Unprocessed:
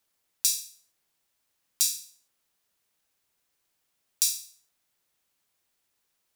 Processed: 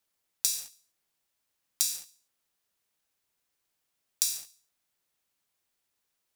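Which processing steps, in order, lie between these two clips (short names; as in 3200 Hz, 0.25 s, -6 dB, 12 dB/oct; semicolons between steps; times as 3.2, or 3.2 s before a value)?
sample leveller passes 2; compressor 12:1, threshold -24 dBFS, peak gain reduction 12 dB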